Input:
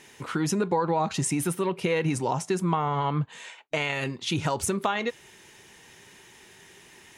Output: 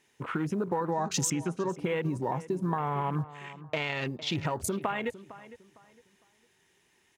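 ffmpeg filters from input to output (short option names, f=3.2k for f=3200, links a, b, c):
-filter_complex "[0:a]acrusher=bits=6:mode=log:mix=0:aa=0.000001,acompressor=threshold=-30dB:ratio=2,asettb=1/sr,asplit=3[a][b][c];[a]atrim=end=0.924[d];[b]atrim=start=0.92:end=1.69,asetpts=PTS-STARTPTS,afade=t=in:d=0.004:c=qsin,afade=t=out:st=0.766:d=0.004:c=qsin,lowpass=f=6.5k:t=q:w=3.4[e];[c]atrim=start=1.686[f];[d][e]acrossfade=d=0.004:c1=hsin:c2=qsin[g];[g][f]acrossfade=d=0.004:c1=qsin:c2=hsin,afwtdn=0.01,asplit=2[h][i];[i]adelay=456,lowpass=f=2.6k:p=1,volume=-16dB,asplit=2[j][k];[k]adelay=456,lowpass=f=2.6k:p=1,volume=0.29,asplit=2[l][m];[m]adelay=456,lowpass=f=2.6k:p=1,volume=0.29[n];[j][l][n]amix=inputs=3:normalize=0[o];[h][o]amix=inputs=2:normalize=0"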